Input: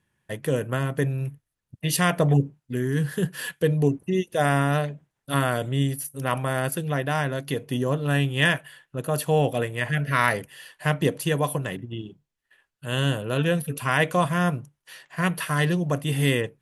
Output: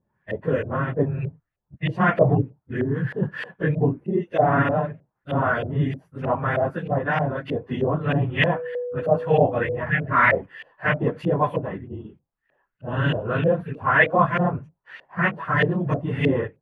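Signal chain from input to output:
random phases in long frames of 50 ms
0:08.54–0:09.76: steady tone 490 Hz −29 dBFS
auto-filter low-pass saw up 3.2 Hz 550–2,500 Hz

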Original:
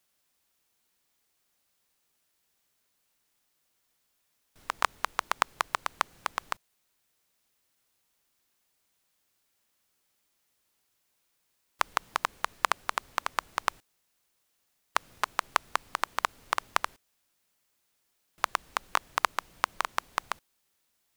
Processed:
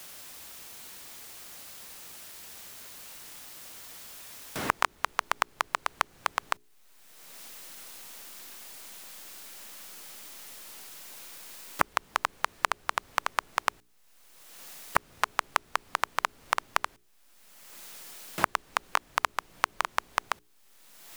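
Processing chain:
mains-hum notches 60/120/180/240/300/360/420 Hz
in parallel at −11.5 dB: slack as between gear wheels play −28.5 dBFS
on the sum: multiband upward and downward compressor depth 100%
level −1 dB

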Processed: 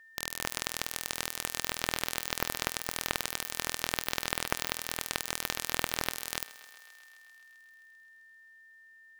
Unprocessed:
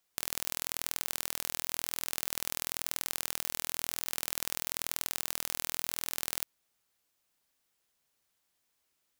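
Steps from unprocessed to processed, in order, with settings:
each half-wave held at its own peak
steady tone 1,800 Hz −50 dBFS
feedback echo with a high-pass in the loop 131 ms, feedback 78%, high-pass 330 Hz, level −19 dB
level −3.5 dB

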